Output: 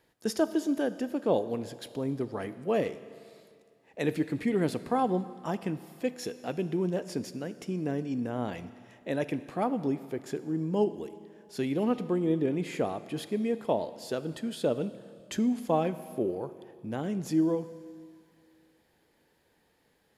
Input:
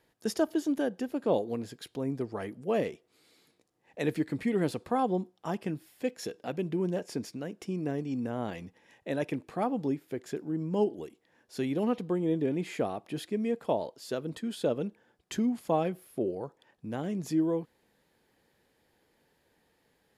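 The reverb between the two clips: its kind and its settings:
four-comb reverb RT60 2.2 s, combs from 25 ms, DRR 13.5 dB
level +1 dB

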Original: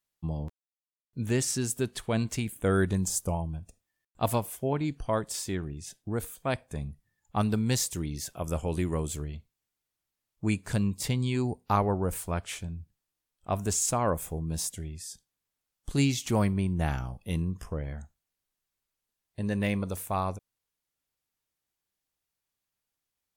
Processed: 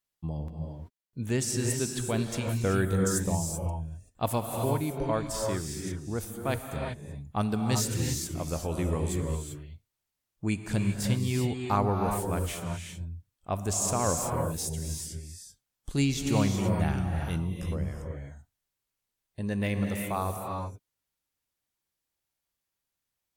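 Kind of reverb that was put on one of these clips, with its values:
reverb whose tail is shaped and stops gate 410 ms rising, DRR 2.5 dB
level −1.5 dB

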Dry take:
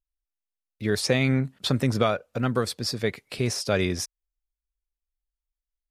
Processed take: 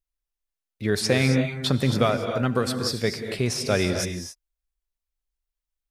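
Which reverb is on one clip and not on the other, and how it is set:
reverb whose tail is shaped and stops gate 300 ms rising, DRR 6 dB
level +1 dB

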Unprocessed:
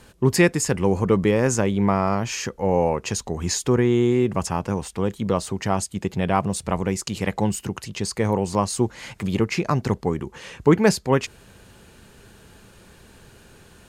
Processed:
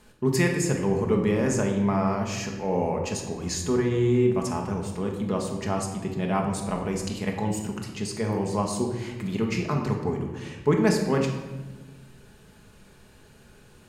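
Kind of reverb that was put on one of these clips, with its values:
rectangular room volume 840 cubic metres, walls mixed, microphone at 1.4 metres
level −7.5 dB

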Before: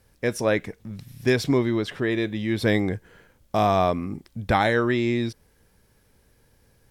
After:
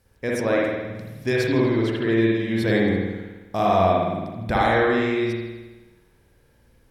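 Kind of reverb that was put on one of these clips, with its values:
spring reverb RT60 1.2 s, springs 53 ms, chirp 30 ms, DRR −4 dB
level −3.5 dB

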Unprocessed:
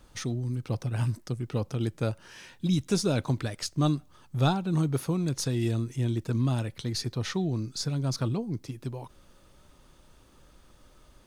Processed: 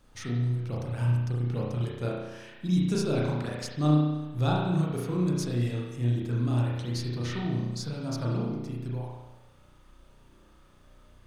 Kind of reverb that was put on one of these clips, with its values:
spring reverb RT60 1.1 s, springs 33 ms, chirp 55 ms, DRR −4.5 dB
level −6 dB

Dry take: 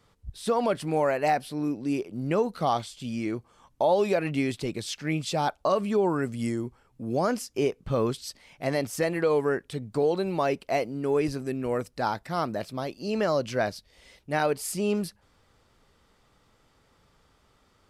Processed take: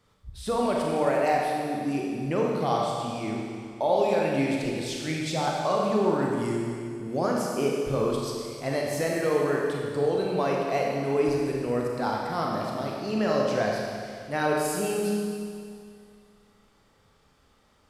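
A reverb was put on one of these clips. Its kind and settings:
four-comb reverb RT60 2.2 s, combs from 29 ms, DRR −2 dB
level −3 dB

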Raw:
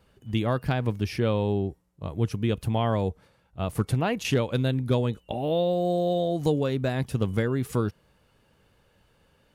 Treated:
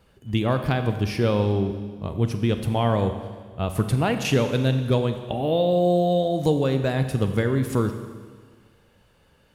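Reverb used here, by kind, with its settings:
four-comb reverb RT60 1.6 s, combs from 30 ms, DRR 7.5 dB
level +3 dB

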